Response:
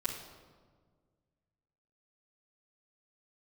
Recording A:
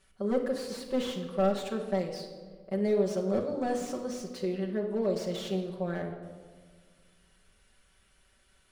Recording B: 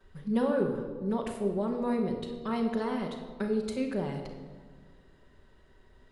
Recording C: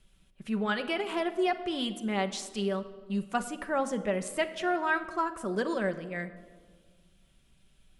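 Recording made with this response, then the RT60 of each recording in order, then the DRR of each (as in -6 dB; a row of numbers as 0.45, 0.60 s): B; 1.6, 1.6, 1.7 s; -3.5, -9.0, 6.5 dB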